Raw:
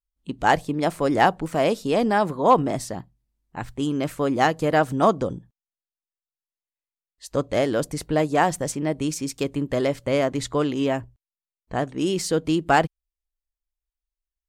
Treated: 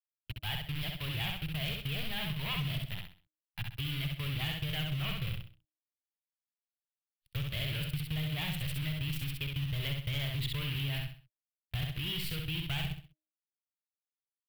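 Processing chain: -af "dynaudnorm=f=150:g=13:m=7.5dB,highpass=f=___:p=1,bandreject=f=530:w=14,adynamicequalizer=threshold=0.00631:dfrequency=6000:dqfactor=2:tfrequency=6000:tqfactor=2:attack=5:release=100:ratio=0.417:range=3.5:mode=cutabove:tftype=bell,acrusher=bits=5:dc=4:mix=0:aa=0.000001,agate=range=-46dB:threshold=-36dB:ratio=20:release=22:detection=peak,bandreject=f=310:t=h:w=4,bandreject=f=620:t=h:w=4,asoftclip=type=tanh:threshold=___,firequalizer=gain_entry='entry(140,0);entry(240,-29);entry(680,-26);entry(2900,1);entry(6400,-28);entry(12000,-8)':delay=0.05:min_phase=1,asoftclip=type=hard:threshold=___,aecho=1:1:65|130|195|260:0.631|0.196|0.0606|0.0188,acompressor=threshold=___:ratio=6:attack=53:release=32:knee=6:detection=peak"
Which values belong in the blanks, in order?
42, -16.5dB, -25dB, -36dB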